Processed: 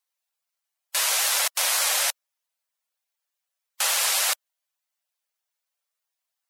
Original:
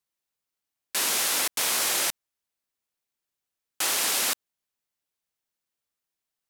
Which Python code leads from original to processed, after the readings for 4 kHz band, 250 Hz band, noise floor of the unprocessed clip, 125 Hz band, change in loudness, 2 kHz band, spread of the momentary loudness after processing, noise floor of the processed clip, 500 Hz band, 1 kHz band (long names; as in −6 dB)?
+2.5 dB, below −25 dB, below −85 dBFS, can't be measured, +2.5 dB, +3.0 dB, 7 LU, −85 dBFS, 0.0 dB, +2.5 dB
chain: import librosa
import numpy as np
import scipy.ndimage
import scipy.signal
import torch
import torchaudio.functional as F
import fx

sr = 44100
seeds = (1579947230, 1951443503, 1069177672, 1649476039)

y = np.where(x < 0.0, 10.0 ** (-12.0 / 20.0) * x, x)
y = fx.spec_gate(y, sr, threshold_db=-25, keep='strong')
y = scipy.signal.sosfilt(scipy.signal.butter(8, 520.0, 'highpass', fs=sr, output='sos'), y)
y = F.gain(torch.from_numpy(y), 7.0).numpy()